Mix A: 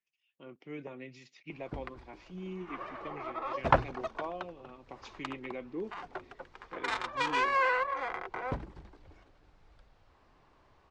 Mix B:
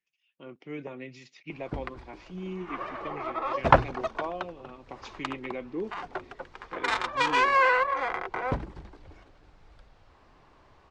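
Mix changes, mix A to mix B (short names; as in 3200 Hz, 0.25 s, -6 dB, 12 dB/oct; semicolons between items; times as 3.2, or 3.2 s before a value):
speech +4.5 dB; background +6.0 dB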